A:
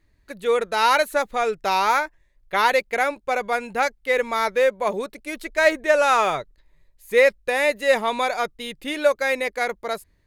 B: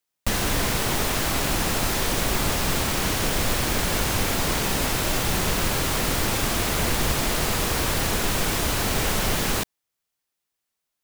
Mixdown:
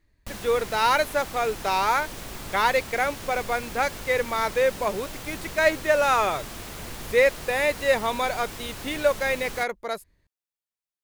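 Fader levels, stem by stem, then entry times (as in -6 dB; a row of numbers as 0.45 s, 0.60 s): -3.0 dB, -14.0 dB; 0.00 s, 0.00 s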